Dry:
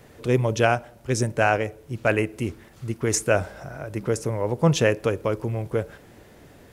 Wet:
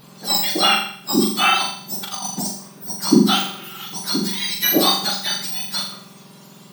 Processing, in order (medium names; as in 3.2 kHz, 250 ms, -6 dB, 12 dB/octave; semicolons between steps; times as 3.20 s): spectrum inverted on a logarithmic axis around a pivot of 1.4 kHz; 1.77–2.47 s: compressor with a negative ratio -33 dBFS, ratio -0.5; flutter echo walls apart 7.1 m, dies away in 0.56 s; trim +6 dB